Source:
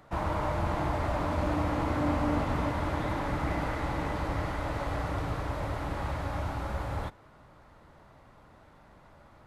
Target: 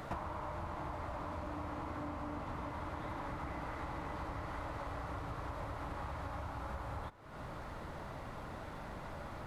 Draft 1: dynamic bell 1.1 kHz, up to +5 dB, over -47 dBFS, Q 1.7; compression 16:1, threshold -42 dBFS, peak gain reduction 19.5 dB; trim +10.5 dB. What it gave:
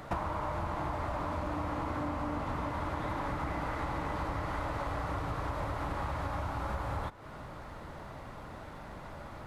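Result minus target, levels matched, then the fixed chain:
compression: peak gain reduction -7 dB
dynamic bell 1.1 kHz, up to +5 dB, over -47 dBFS, Q 1.7; compression 16:1, threshold -49.5 dBFS, peak gain reduction 26.5 dB; trim +10.5 dB

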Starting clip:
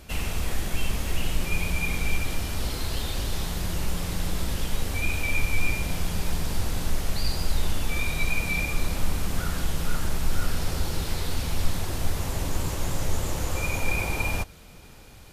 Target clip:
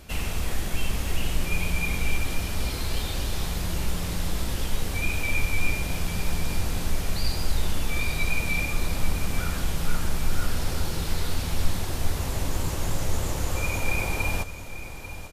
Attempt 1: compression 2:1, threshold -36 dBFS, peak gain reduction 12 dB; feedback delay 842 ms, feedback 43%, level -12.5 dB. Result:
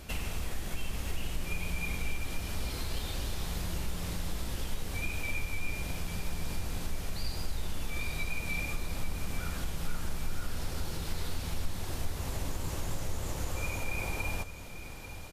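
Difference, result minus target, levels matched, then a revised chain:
compression: peak gain reduction +12 dB
feedback delay 842 ms, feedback 43%, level -12.5 dB

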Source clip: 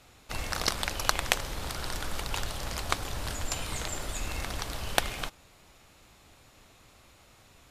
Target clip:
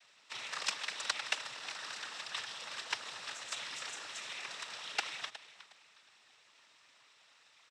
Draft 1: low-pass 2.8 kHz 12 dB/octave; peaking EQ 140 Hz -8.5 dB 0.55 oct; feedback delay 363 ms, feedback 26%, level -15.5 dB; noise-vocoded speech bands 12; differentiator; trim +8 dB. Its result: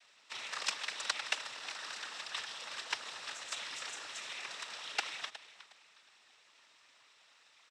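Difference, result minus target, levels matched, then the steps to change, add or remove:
125 Hz band -4.0 dB
remove: peaking EQ 140 Hz -8.5 dB 0.55 oct

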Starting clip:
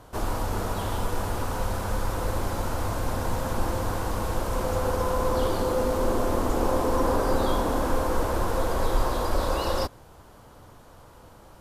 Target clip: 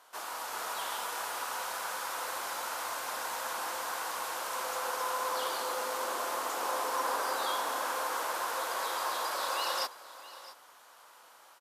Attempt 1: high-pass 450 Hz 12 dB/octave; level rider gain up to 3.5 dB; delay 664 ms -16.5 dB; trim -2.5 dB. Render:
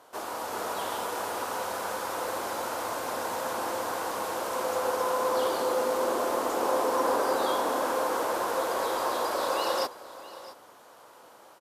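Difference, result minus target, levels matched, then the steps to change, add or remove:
500 Hz band +6.5 dB
change: high-pass 1.1 kHz 12 dB/octave

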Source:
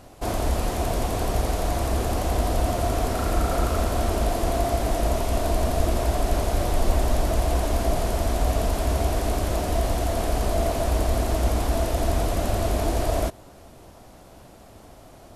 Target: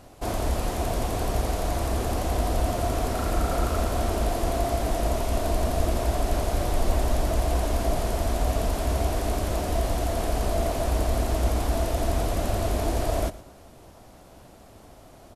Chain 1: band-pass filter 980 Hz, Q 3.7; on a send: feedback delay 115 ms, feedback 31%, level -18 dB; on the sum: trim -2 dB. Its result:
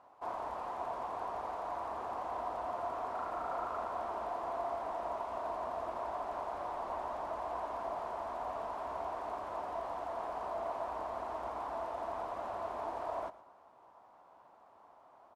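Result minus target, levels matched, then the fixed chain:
1 kHz band +7.0 dB
on a send: feedback delay 115 ms, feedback 31%, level -18 dB; on the sum: trim -2 dB

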